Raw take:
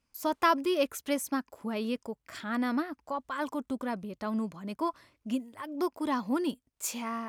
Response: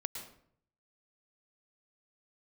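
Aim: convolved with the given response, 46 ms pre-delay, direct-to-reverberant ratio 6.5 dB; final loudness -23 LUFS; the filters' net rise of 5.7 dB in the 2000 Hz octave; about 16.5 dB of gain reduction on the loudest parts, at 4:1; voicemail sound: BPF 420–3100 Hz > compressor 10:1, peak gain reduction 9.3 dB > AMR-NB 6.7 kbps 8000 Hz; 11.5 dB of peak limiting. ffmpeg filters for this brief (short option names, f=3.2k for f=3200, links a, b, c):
-filter_complex "[0:a]equalizer=f=2k:t=o:g=8,acompressor=threshold=-37dB:ratio=4,alimiter=level_in=9.5dB:limit=-24dB:level=0:latency=1,volume=-9.5dB,asplit=2[a][b];[1:a]atrim=start_sample=2205,adelay=46[c];[b][c]afir=irnorm=-1:irlink=0,volume=-6.5dB[d];[a][d]amix=inputs=2:normalize=0,highpass=420,lowpass=3.1k,acompressor=threshold=-46dB:ratio=10,volume=29.5dB" -ar 8000 -c:a libopencore_amrnb -b:a 6700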